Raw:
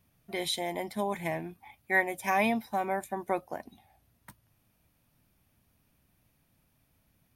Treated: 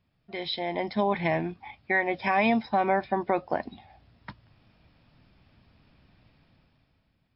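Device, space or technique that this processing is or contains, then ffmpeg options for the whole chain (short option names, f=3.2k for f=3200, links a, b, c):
low-bitrate web radio: -af "dynaudnorm=f=130:g=13:m=13dB,alimiter=limit=-11.5dB:level=0:latency=1:release=136,volume=-2dB" -ar 12000 -c:a libmp3lame -b:a 40k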